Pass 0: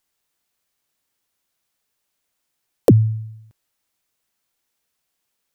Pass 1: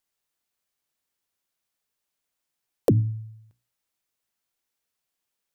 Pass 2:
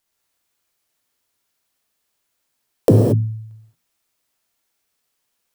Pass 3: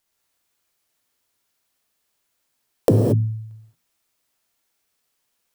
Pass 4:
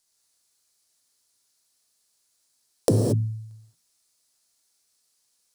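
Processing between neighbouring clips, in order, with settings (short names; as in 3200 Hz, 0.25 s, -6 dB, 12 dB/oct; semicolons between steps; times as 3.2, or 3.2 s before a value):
notches 60/120/180/240/300 Hz; gain -7 dB
non-linear reverb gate 0.25 s flat, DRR -1 dB; gain +6 dB
compressor 3:1, threshold -13 dBFS, peak gain reduction 4.5 dB
band shelf 6600 Hz +11.5 dB; gain -4.5 dB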